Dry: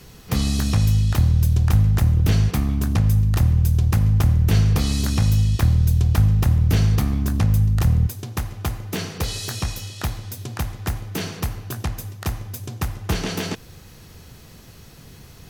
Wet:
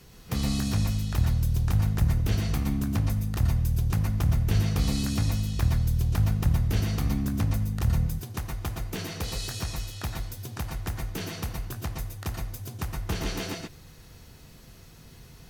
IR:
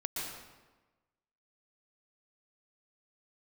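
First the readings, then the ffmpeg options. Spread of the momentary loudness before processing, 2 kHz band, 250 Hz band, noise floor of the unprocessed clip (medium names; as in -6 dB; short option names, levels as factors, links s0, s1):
12 LU, -5.5 dB, -5.5 dB, -45 dBFS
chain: -filter_complex "[1:a]atrim=start_sample=2205,afade=t=out:st=0.18:d=0.01,atrim=end_sample=8379[s0];[0:a][s0]afir=irnorm=-1:irlink=0,volume=0.531"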